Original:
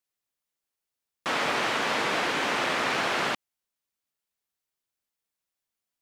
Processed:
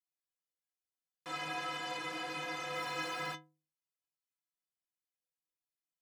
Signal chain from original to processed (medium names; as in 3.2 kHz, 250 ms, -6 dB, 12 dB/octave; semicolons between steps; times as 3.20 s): 2.75–3.33 s: jump at every zero crossing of -36.5 dBFS; inharmonic resonator 150 Hz, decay 0.43 s, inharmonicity 0.03